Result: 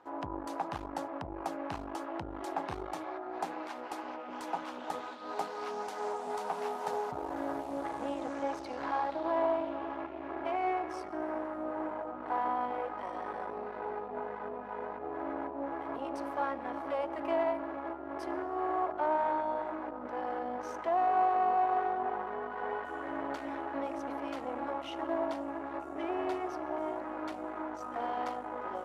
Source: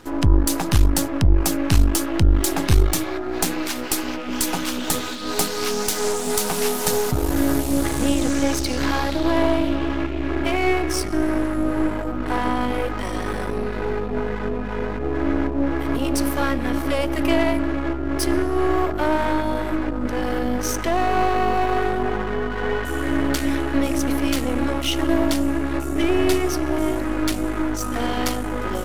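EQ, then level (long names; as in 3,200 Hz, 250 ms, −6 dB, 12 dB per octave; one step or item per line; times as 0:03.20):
resonant band-pass 820 Hz, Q 2.1
−4.5 dB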